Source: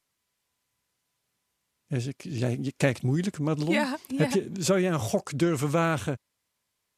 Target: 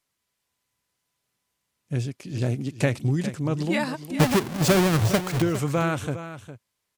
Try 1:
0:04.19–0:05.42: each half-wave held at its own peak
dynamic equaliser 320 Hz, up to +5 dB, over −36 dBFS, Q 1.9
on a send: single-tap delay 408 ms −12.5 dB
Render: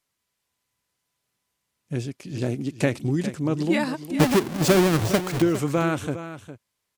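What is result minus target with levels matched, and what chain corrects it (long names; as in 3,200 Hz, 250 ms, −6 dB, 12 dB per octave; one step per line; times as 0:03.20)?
125 Hz band −3.0 dB
0:04.19–0:05.42: each half-wave held at its own peak
dynamic equaliser 110 Hz, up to +5 dB, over −36 dBFS, Q 1.9
on a send: single-tap delay 408 ms −12.5 dB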